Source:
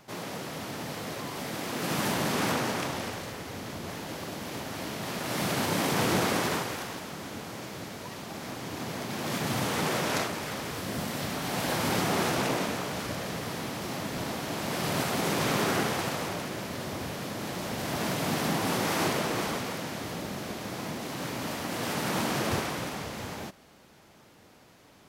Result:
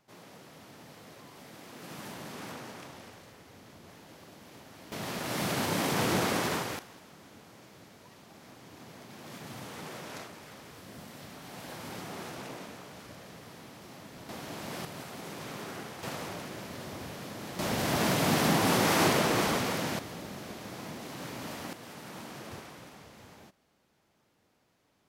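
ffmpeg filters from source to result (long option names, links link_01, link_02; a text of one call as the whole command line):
ffmpeg -i in.wav -af "asetnsamples=nb_out_samples=441:pad=0,asendcmd='4.92 volume volume -2dB;6.79 volume volume -14dB;14.29 volume volume -7.5dB;14.85 volume volume -14dB;16.03 volume volume -6dB;17.59 volume volume 3dB;19.99 volume volume -6dB;21.73 volume volume -15dB',volume=-14.5dB" out.wav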